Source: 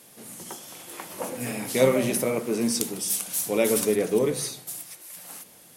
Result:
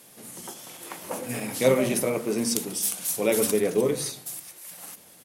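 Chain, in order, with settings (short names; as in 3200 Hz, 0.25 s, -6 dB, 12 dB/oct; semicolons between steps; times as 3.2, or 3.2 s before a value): requantised 12-bit, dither none; de-hum 76.52 Hz, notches 6; tempo 1.1×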